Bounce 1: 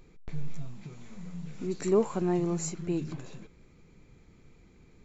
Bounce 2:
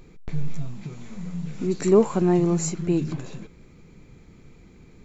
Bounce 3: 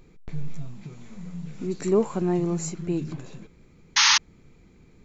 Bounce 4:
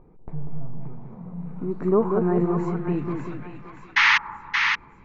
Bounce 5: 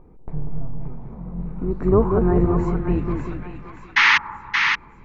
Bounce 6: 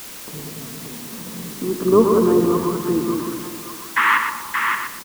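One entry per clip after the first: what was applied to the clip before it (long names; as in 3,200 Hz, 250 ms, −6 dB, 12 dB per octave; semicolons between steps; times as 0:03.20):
parametric band 190 Hz +2.5 dB 1.8 octaves; level +6.5 dB
sound drawn into the spectrogram noise, 0:03.96–0:04.18, 820–6,700 Hz −13 dBFS; level −4.5 dB
low-pass filter sweep 900 Hz → 2,100 Hz, 0:01.29–0:03.20; echo with a time of its own for lows and highs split 880 Hz, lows 192 ms, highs 575 ms, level −4.5 dB
sub-octave generator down 2 octaves, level 0 dB; level +2.5 dB
loudspeaker in its box 220–2,600 Hz, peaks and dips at 230 Hz +8 dB, 320 Hz +5 dB, 460 Hz +5 dB, 760 Hz −8 dB, 1,100 Hz +8 dB, 2,300 Hz −9 dB; repeating echo 121 ms, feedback 26%, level −7 dB; bit-depth reduction 6 bits, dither triangular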